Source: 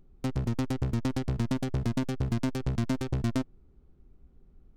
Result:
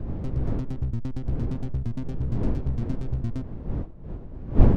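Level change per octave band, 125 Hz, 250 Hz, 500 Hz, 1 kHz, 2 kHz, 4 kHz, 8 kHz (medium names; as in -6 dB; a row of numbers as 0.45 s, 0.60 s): +4.5 dB, +0.5 dB, +2.5 dB, -0.5 dB, -7.0 dB, under -10 dB, under -10 dB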